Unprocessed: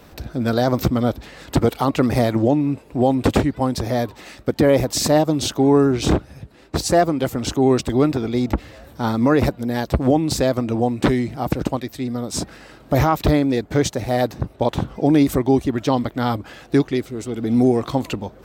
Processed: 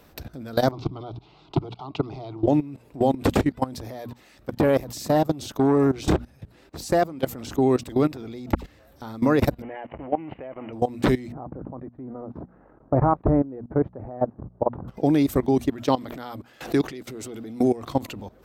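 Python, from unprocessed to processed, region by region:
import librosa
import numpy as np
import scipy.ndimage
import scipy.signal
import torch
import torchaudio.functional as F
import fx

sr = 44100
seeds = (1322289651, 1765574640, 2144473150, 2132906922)

y = fx.chain(x, sr, fx.lowpass(hz=4200.0, slope=24),
    fx.fixed_phaser(hz=350.0, stages=8), at=(0.71, 2.48))
y = fx.chain(y, sr, fx.low_shelf(hz=150.0, db=2.0),
    fx.transformer_sat(knee_hz=420.0), at=(3.63, 5.96))
y = fx.chain(y, sr, fx.dispersion(late='lows', ms=77.0, hz=1400.0),
    fx.clip_hard(threshold_db=-23.5), at=(8.55, 9.02))
y = fx.chain(y, sr, fx.zero_step(step_db=-31.0),
    fx.cheby_ripple(hz=3000.0, ripple_db=6),
    fx.low_shelf(hz=210.0, db=-9.5), at=(9.62, 10.73))
y = fx.chain(y, sr, fx.law_mismatch(coded='A'),
    fx.lowpass(hz=1200.0, slope=24), at=(11.32, 14.88))
y = fx.chain(y, sr, fx.low_shelf(hz=100.0, db=-10.5),
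    fx.pre_swell(db_per_s=150.0), at=(15.83, 17.78))
y = fx.peak_eq(y, sr, hz=13000.0, db=6.0, octaves=0.28)
y = fx.hum_notches(y, sr, base_hz=60, count=4)
y = fx.level_steps(y, sr, step_db=18)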